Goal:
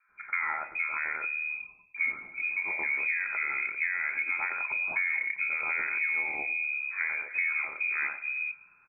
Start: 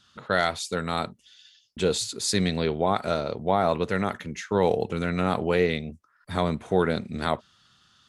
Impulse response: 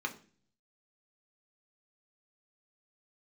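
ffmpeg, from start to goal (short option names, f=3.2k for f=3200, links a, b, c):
-filter_complex "[0:a]asplit=2[a][b];[b]asoftclip=type=hard:threshold=-18.5dB,volume=-10dB[c];[a][c]amix=inputs=2:normalize=0,aecho=1:1:94|188|282|376:0.0891|0.0463|0.0241|0.0125,aeval=exprs='0.398*(cos(1*acos(clip(val(0)/0.398,-1,1)))-cos(1*PI/2))+0.0501*(cos(2*acos(clip(val(0)/0.398,-1,1)))-cos(2*PI/2))+0.00282*(cos(6*acos(clip(val(0)/0.398,-1,1)))-cos(6*PI/2))+0.0112*(cos(8*acos(clip(val(0)/0.398,-1,1)))-cos(8*PI/2))':c=same,asplit=2[d][e];[1:a]atrim=start_sample=2205,asetrate=61740,aresample=44100[f];[e][f]afir=irnorm=-1:irlink=0,volume=-6.5dB[g];[d][g]amix=inputs=2:normalize=0,asetrate=40131,aresample=44100,acrossover=split=190|1200[h][i][j];[j]adelay=90[k];[h]adelay=420[l];[l][i][k]amix=inputs=3:normalize=0,acompressor=threshold=-27dB:ratio=6,lowpass=f=2.2k:t=q:w=0.5098,lowpass=f=2.2k:t=q:w=0.6013,lowpass=f=2.2k:t=q:w=0.9,lowpass=f=2.2k:t=q:w=2.563,afreqshift=-2600"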